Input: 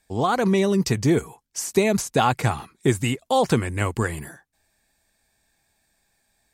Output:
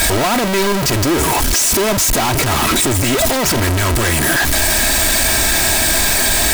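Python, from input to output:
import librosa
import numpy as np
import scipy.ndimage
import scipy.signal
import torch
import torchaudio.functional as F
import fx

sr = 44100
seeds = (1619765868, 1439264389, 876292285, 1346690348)

y = np.sign(x) * np.sqrt(np.mean(np.square(x)))
y = y + 0.43 * np.pad(y, (int(3.1 * sr / 1000.0), 0))[:len(y)]
y = y * librosa.db_to_amplitude(9.0)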